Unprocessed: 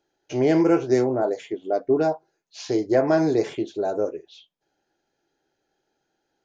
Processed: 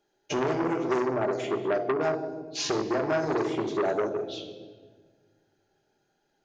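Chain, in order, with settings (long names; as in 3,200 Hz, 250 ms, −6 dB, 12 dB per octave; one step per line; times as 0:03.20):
noise gate −50 dBFS, range −7 dB
downward compressor 5 to 1, threshold −31 dBFS, peak gain reduction 15.5 dB
rectangular room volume 1,700 cubic metres, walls mixed, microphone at 1.3 metres
saturating transformer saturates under 1,200 Hz
level +6.5 dB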